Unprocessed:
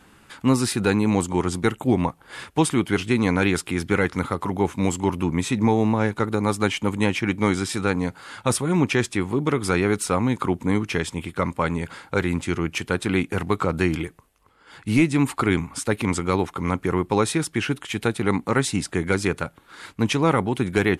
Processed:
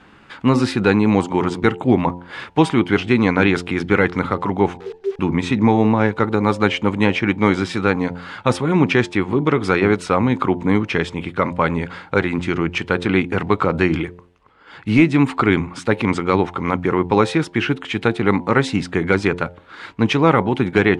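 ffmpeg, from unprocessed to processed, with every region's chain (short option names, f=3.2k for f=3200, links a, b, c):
-filter_complex "[0:a]asettb=1/sr,asplit=3[a][b][c];[a]atrim=end=4.774[d];[b]atrim=start=4.77:end=5.19,asetpts=PTS-STARTPTS,afade=t=in:d=0.004:c=qsin,afade=t=out:st=0.416:d=0.004:c=qsin,agate=range=-33dB:threshold=-28dB:ratio=3:release=100:detection=peak,asuperpass=centerf=420:order=8:qfactor=5.8,acrusher=bits=8:dc=4:mix=0:aa=0.000001[e];[c]atrim=start=5.186[f];[d][e]acrossfade=d=0.004:c1=hsin:c2=qsin[g];[g][f]acrossfade=d=0.004:c1=qsin:c2=hsin,lowpass=3.6k,lowshelf=f=97:g=-5.5,bandreject=f=88.17:t=h:w=4,bandreject=f=176.34:t=h:w=4,bandreject=f=264.51:t=h:w=4,bandreject=f=352.68:t=h:w=4,bandreject=f=440.85:t=h:w=4,bandreject=f=529.02:t=h:w=4,bandreject=f=617.19:t=h:w=4,bandreject=f=705.36:t=h:w=4,bandreject=f=793.53:t=h:w=4,bandreject=f=881.7:t=h:w=4,bandreject=f=969.87:t=h:w=4,volume=6dB"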